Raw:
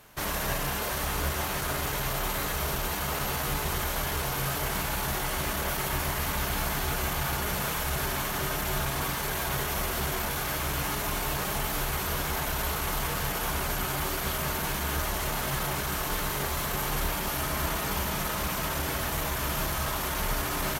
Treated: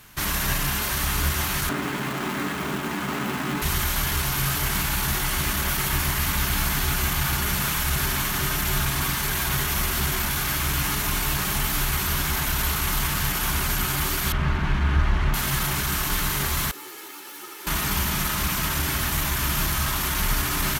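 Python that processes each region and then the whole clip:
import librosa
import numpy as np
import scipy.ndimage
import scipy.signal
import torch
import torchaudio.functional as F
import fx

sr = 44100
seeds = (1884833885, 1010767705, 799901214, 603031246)

y = fx.chain(x, sr, fx.median_filter(points=9),
    fx.highpass_res(hz=250.0, q=1.9),
    fx.low_shelf(hz=360.0, db=5.0), at=(1.69, 3.62))
y = fx.chain(y, sr, fx.lowpass(hz=2300.0, slope=12),
    fx.low_shelf(hz=150.0, db=8.0), at=(14.32, 15.34))
y = fx.chain(y, sr, fx.lower_of_two(delay_ms=2.3),
    fx.ladder_highpass(hz=280.0, resonance_pct=50),
    fx.ensemble(), at=(16.71, 17.67))
y = fx.peak_eq(y, sr, hz=590.0, db=-11.0, octaves=1.3)
y = fx.notch(y, sr, hz=470.0, q=12.0)
y = y * 10.0 ** (7.0 / 20.0)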